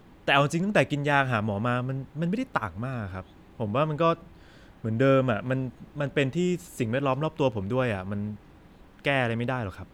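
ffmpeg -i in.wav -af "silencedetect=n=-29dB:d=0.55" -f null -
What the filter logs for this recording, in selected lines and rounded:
silence_start: 4.14
silence_end: 4.84 | silence_duration: 0.70
silence_start: 8.33
silence_end: 9.05 | silence_duration: 0.72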